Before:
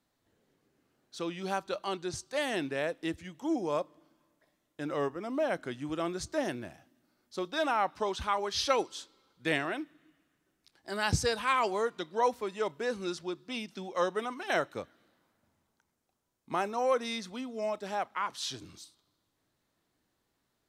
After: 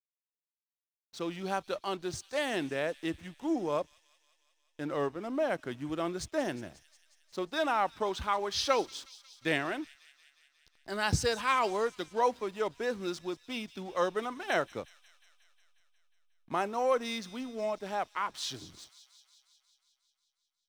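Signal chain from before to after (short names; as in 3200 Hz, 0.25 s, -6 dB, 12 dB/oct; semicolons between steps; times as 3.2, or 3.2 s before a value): backlash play -46.5 dBFS; thin delay 0.18 s, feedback 70%, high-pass 3600 Hz, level -13.5 dB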